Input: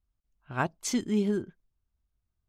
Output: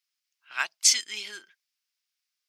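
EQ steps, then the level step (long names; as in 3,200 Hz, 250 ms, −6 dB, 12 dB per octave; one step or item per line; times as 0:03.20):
dynamic equaliser 9,000 Hz, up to +6 dB, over −49 dBFS, Q 1.3
high-pass with resonance 2,200 Hz, resonance Q 1.6
parametric band 5,100 Hz +9.5 dB 0.56 octaves
+7.0 dB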